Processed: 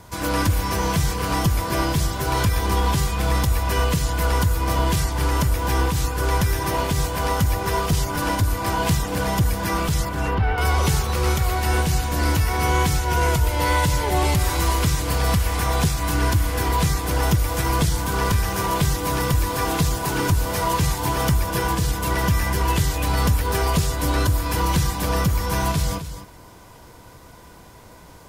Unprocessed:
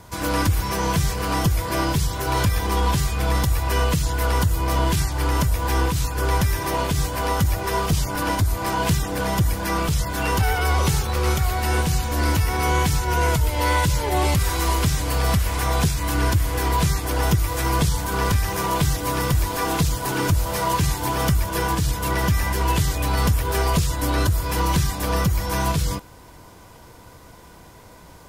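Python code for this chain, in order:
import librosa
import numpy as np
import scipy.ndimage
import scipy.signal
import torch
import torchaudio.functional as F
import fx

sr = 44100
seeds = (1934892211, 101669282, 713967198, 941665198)

y = fx.air_absorb(x, sr, metres=380.0, at=(10.09, 10.58))
y = y + 10.0 ** (-11.0 / 20.0) * np.pad(y, (int(256 * sr / 1000.0), 0))[:len(y)]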